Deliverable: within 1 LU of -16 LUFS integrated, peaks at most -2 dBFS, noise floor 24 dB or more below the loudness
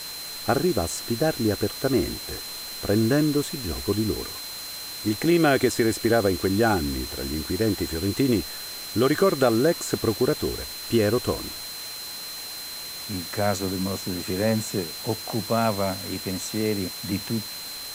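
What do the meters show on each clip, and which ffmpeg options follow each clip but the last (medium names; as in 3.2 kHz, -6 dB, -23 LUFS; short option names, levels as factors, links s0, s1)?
steady tone 4.1 kHz; tone level -36 dBFS; noise floor -36 dBFS; noise floor target -49 dBFS; loudness -25.0 LUFS; peak level -8.0 dBFS; loudness target -16.0 LUFS
-> -af "bandreject=f=4100:w=30"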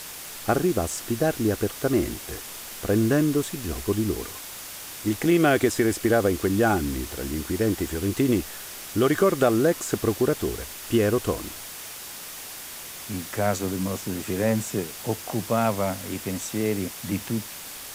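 steady tone not found; noise floor -39 dBFS; noise floor target -50 dBFS
-> -af "afftdn=nr=11:nf=-39"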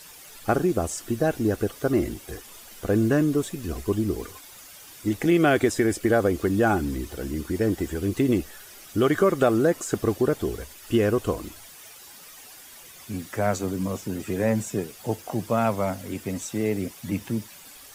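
noise floor -46 dBFS; noise floor target -49 dBFS
-> -af "afftdn=nr=6:nf=-46"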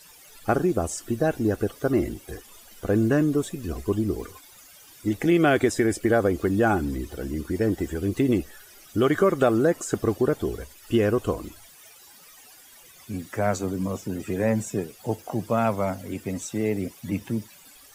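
noise floor -51 dBFS; loudness -25.0 LUFS; peak level -8.5 dBFS; loudness target -16.0 LUFS
-> -af "volume=2.82,alimiter=limit=0.794:level=0:latency=1"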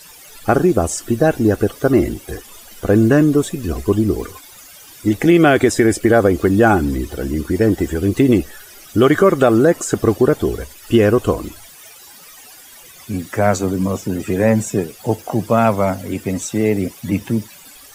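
loudness -16.5 LUFS; peak level -2.0 dBFS; noise floor -42 dBFS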